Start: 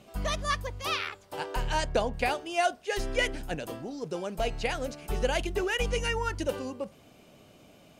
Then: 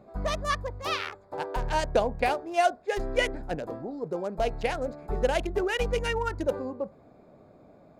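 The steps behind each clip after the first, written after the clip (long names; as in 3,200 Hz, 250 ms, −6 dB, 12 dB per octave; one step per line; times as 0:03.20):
adaptive Wiener filter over 15 samples
parametric band 620 Hz +4 dB 1.9 octaves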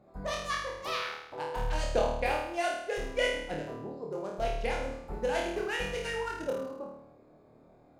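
harmonic and percussive parts rebalanced harmonic −5 dB
flutter between parallel walls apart 4.5 metres, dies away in 0.76 s
level −5.5 dB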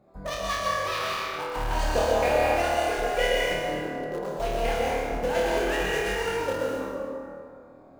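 in parallel at −12 dB: bit reduction 5 bits
on the sum: dense smooth reverb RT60 2.3 s, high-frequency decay 0.55×, pre-delay 105 ms, DRR −3.5 dB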